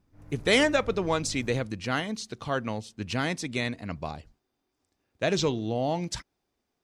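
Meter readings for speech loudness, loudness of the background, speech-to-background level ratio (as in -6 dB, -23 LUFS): -28.5 LUFS, -47.0 LUFS, 18.5 dB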